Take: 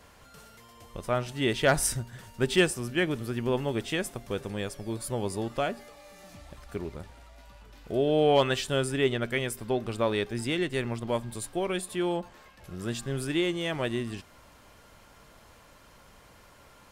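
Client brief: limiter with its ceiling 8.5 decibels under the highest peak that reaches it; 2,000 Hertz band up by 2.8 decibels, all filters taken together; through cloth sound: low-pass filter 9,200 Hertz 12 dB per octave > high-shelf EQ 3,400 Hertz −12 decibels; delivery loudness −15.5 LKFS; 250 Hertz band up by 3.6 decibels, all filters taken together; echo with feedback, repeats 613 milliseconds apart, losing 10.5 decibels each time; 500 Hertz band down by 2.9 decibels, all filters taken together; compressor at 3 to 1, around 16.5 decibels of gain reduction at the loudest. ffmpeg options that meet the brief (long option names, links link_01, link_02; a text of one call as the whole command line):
ffmpeg -i in.wav -af "equalizer=frequency=250:width_type=o:gain=7.5,equalizer=frequency=500:width_type=o:gain=-7,equalizer=frequency=2000:width_type=o:gain=7.5,acompressor=threshold=-39dB:ratio=3,alimiter=level_in=6.5dB:limit=-24dB:level=0:latency=1,volume=-6.5dB,lowpass=9200,highshelf=frequency=3400:gain=-12,aecho=1:1:613|1226|1839:0.299|0.0896|0.0269,volume=28.5dB" out.wav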